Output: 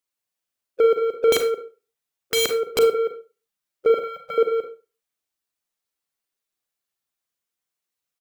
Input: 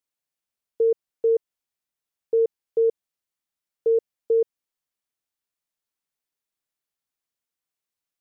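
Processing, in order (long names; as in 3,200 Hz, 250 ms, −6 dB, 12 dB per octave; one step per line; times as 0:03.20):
spectral magnitudes quantised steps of 15 dB
low-shelf EQ 450 Hz −2.5 dB
leveller curve on the samples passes 2
single-tap delay 175 ms −8.5 dB
in parallel at 0 dB: downward compressor 6 to 1, threshold −27 dBFS, peak gain reduction 9 dB
0:01.32–0:02.79: on the sum: wrap-around overflow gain 16.5 dB
0:03.94–0:04.38: elliptic band-stop filter 200–560 Hz
on a send at −6 dB: convolution reverb RT60 0.30 s, pre-delay 33 ms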